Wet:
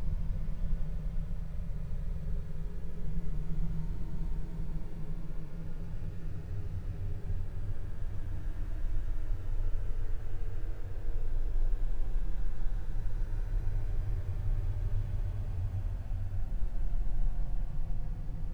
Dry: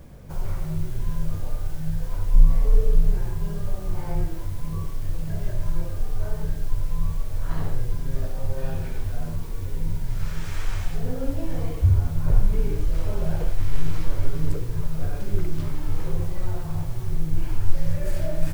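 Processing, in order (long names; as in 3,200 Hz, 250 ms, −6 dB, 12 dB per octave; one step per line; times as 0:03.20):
running median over 41 samples
extreme stretch with random phases 28×, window 0.10 s, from 0:10.25
level −7 dB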